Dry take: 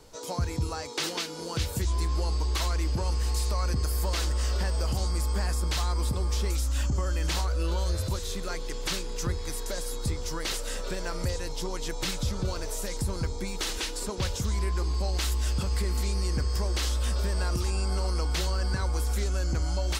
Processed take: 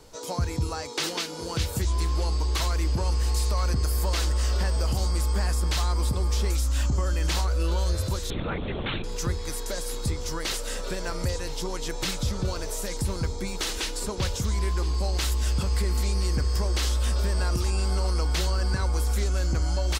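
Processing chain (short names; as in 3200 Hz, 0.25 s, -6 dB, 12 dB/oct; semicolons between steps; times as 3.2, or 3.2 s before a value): echo 1.02 s -18 dB; 8.3–9.04 LPC vocoder at 8 kHz whisper; gain +2 dB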